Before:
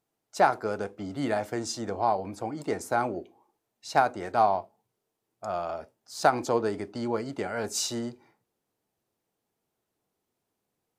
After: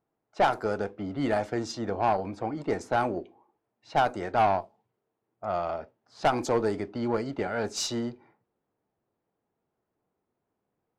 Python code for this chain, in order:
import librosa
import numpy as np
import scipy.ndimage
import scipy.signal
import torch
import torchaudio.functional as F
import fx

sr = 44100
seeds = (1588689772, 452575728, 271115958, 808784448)

y = fx.env_lowpass(x, sr, base_hz=1600.0, full_db=-21.5)
y = fx.tube_stage(y, sr, drive_db=19.0, bias=0.35)
y = F.gain(torch.from_numpy(y), 3.0).numpy()